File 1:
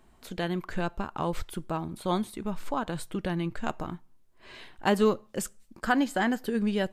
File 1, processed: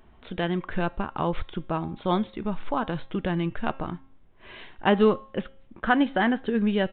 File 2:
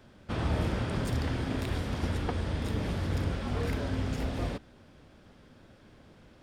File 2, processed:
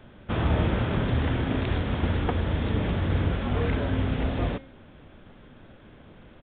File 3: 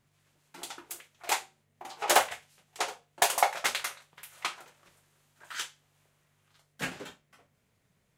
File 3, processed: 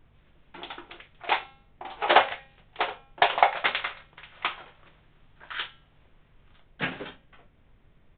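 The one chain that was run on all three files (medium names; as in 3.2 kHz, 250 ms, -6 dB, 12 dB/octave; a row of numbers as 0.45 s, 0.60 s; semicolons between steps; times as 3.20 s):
de-hum 269 Hz, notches 33; added noise brown -63 dBFS; resampled via 8 kHz; normalise loudness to -27 LUFS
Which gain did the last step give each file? +3.5 dB, +5.5 dB, +5.5 dB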